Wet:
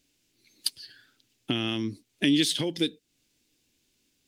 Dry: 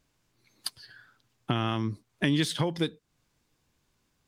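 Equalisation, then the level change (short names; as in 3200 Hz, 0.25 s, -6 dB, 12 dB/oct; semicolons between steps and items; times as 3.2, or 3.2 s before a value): EQ curve 160 Hz 0 dB, 280 Hz +11 dB, 1100 Hz -6 dB, 2700 Hz +12 dB; -6.0 dB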